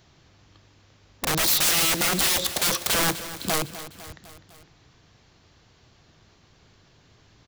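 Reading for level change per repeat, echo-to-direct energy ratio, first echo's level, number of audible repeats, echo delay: -4.5 dB, -12.0 dB, -14.0 dB, 4, 0.252 s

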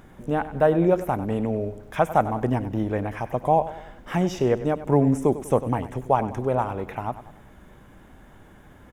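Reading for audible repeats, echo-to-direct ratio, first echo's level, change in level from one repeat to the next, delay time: 4, -13.0 dB, -14.0 dB, -7.0 dB, 97 ms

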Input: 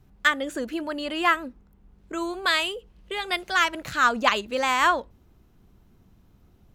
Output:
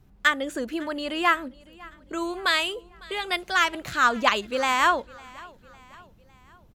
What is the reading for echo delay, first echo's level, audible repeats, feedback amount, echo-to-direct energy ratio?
0.554 s, -23.0 dB, 3, 51%, -22.0 dB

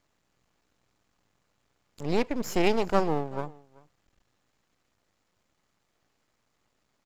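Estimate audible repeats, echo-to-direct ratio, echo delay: 1, -23.5 dB, 0.383 s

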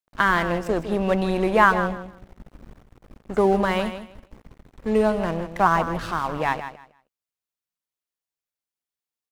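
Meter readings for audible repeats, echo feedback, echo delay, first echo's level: 2, 21%, 0.158 s, -11.0 dB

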